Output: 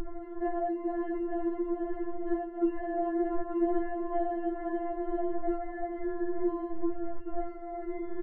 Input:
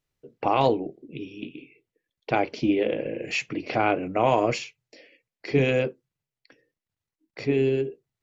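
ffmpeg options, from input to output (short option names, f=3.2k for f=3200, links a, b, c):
-filter_complex "[0:a]aeval=exprs='val(0)+0.5*0.0188*sgn(val(0))':c=same,bandreject=f=50:t=h:w=6,bandreject=f=100:t=h:w=6,bandreject=f=150:t=h:w=6,bandreject=f=200:t=h:w=6,bandreject=f=250:t=h:w=6,bandreject=f=300:t=h:w=6,bandreject=f=350:t=h:w=6,bandreject=f=400:t=h:w=6,asplit=2[a][b];[b]asplit=7[c][d][e][f][g][h][i];[c]adelay=432,afreqshift=-32,volume=-7dB[j];[d]adelay=864,afreqshift=-64,volume=-11.7dB[k];[e]adelay=1296,afreqshift=-96,volume=-16.5dB[l];[f]adelay=1728,afreqshift=-128,volume=-21.2dB[m];[g]adelay=2160,afreqshift=-160,volume=-25.9dB[n];[h]adelay=2592,afreqshift=-192,volume=-30.7dB[o];[i]adelay=3024,afreqshift=-224,volume=-35.4dB[p];[j][k][l][m][n][o][p]amix=inputs=7:normalize=0[q];[a][q]amix=inputs=2:normalize=0,acompressor=mode=upward:threshold=-37dB:ratio=2.5,acrusher=samples=36:mix=1:aa=0.000001,acompressor=threshold=-28dB:ratio=12,lowpass=f=1.4k:w=0.5412,lowpass=f=1.4k:w=1.3066,lowshelf=f=480:g=9,afftfilt=real='re*4*eq(mod(b,16),0)':imag='im*4*eq(mod(b,16),0)':win_size=2048:overlap=0.75"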